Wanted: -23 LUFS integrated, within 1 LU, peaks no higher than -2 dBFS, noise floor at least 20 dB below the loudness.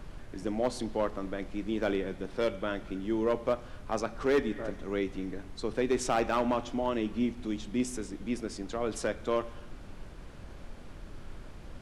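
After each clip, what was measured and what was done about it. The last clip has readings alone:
clipped samples 0.5%; clipping level -20.0 dBFS; noise floor -47 dBFS; noise floor target -53 dBFS; loudness -32.5 LUFS; peak level -20.0 dBFS; loudness target -23.0 LUFS
-> clip repair -20 dBFS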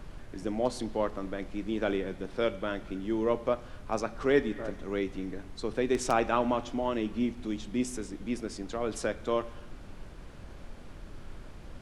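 clipped samples 0.0%; noise floor -47 dBFS; noise floor target -52 dBFS
-> noise print and reduce 6 dB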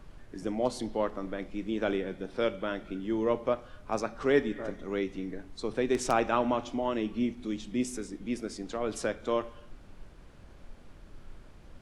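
noise floor -52 dBFS; loudness -32.0 LUFS; peak level -12.0 dBFS; loudness target -23.0 LUFS
-> trim +9 dB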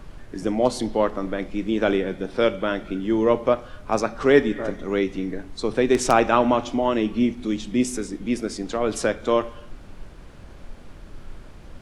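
loudness -23.0 LUFS; peak level -3.0 dBFS; noise floor -43 dBFS

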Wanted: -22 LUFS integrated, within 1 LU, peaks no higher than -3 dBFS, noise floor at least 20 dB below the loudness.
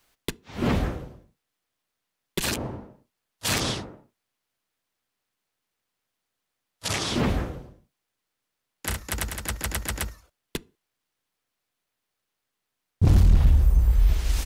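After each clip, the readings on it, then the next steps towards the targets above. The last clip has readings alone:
clipped samples 0.5%; clipping level -11.5 dBFS; loudness -25.5 LUFS; peak level -11.5 dBFS; loudness target -22.0 LUFS
-> clip repair -11.5 dBFS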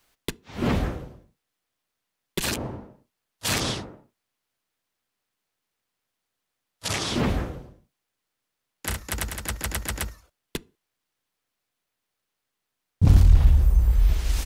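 clipped samples 0.0%; loudness -24.5 LUFS; peak level -4.5 dBFS; loudness target -22.0 LUFS
-> trim +2.5 dB; peak limiter -3 dBFS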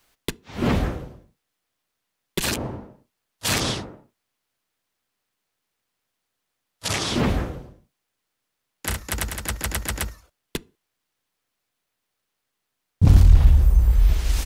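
loudness -22.0 LUFS; peak level -3.0 dBFS; noise floor -80 dBFS

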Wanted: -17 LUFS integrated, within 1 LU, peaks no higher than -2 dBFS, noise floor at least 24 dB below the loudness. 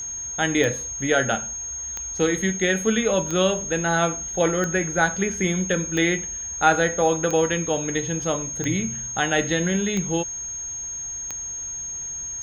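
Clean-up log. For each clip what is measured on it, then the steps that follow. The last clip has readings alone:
clicks found 9; steady tone 6.5 kHz; tone level -29 dBFS; loudness -23.0 LUFS; peak level -3.5 dBFS; loudness target -17.0 LUFS
-> de-click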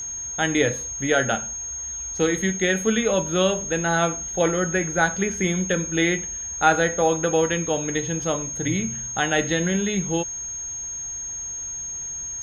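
clicks found 0; steady tone 6.5 kHz; tone level -29 dBFS
-> band-stop 6.5 kHz, Q 30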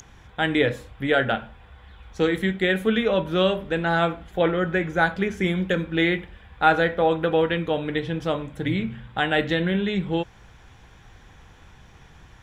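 steady tone not found; loudness -23.5 LUFS; peak level -4.0 dBFS; loudness target -17.0 LUFS
-> trim +6.5 dB; peak limiter -2 dBFS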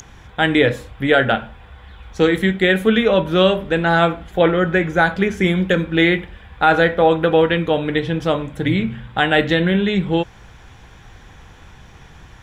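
loudness -17.0 LUFS; peak level -2.0 dBFS; noise floor -44 dBFS

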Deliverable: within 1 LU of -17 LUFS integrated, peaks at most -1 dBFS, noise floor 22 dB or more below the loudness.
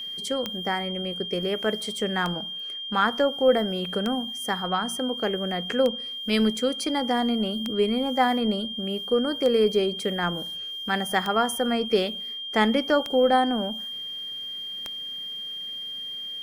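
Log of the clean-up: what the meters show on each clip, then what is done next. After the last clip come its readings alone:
clicks found 9; steady tone 3.2 kHz; tone level -32 dBFS; loudness -25.5 LUFS; peak level -7.5 dBFS; loudness target -17.0 LUFS
-> de-click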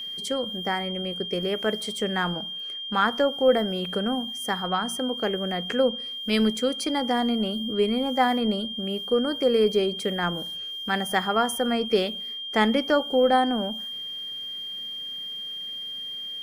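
clicks found 0; steady tone 3.2 kHz; tone level -32 dBFS
-> band-stop 3.2 kHz, Q 30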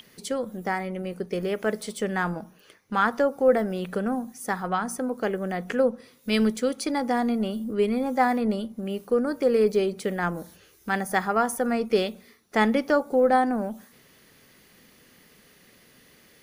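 steady tone not found; loudness -26.0 LUFS; peak level -8.0 dBFS; loudness target -17.0 LUFS
-> trim +9 dB; peak limiter -1 dBFS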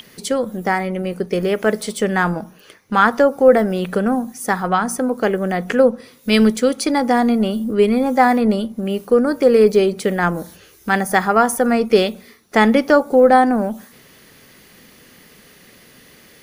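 loudness -17.0 LUFS; peak level -1.0 dBFS; noise floor -48 dBFS

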